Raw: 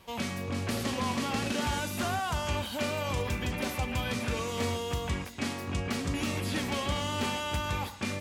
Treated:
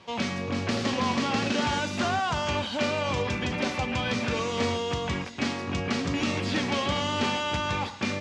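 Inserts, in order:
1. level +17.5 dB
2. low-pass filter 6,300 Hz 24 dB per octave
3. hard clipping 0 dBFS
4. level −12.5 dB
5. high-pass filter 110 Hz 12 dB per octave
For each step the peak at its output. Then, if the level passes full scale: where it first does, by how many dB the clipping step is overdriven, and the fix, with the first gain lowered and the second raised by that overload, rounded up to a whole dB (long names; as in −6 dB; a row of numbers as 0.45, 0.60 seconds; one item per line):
−2.0, −2.0, −2.0, −14.5, −14.0 dBFS
no step passes full scale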